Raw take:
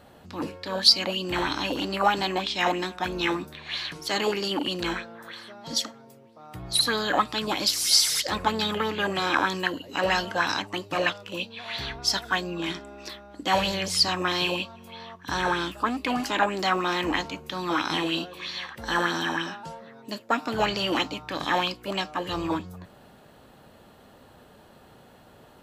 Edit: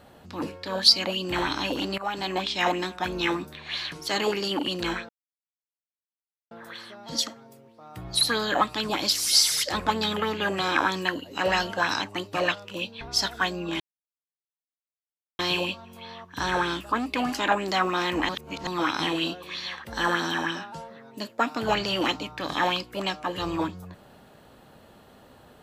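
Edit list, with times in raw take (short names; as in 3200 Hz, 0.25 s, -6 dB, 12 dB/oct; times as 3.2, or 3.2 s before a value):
1.98–2.4 fade in, from -15.5 dB
5.09 insert silence 1.42 s
11.59–11.92 cut
12.71–14.3 mute
17.2–17.58 reverse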